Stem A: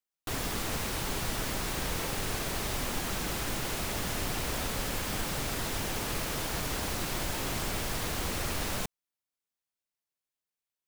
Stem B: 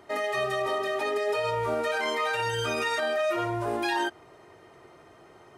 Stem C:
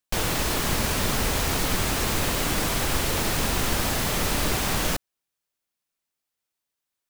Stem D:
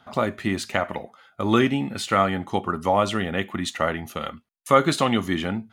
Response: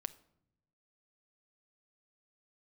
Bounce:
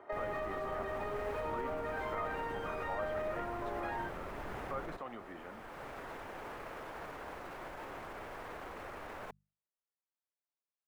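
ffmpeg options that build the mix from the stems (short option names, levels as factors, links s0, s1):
-filter_complex "[0:a]bandreject=f=50:t=h:w=6,bandreject=f=100:t=h:w=6,bandreject=f=150:t=h:w=6,bandreject=f=200:t=h:w=6,adelay=450,volume=0.631[s0];[1:a]acompressor=threshold=0.0158:ratio=6,volume=1.06[s1];[2:a]lowshelf=f=360:g=11.5,alimiter=limit=0.168:level=0:latency=1:release=116,volume=0.266[s2];[3:a]volume=0.119,asplit=2[s3][s4];[s4]apad=whole_len=499328[s5];[s0][s5]sidechaincompress=threshold=0.00501:ratio=8:attack=21:release=722[s6];[s6][s3]amix=inputs=2:normalize=0,alimiter=level_in=1.88:limit=0.0631:level=0:latency=1:release=28,volume=0.531,volume=1[s7];[s1][s2][s7]amix=inputs=3:normalize=0,acrossover=split=370 2000:gain=0.224 1 0.0708[s8][s9][s10];[s8][s9][s10]amix=inputs=3:normalize=0"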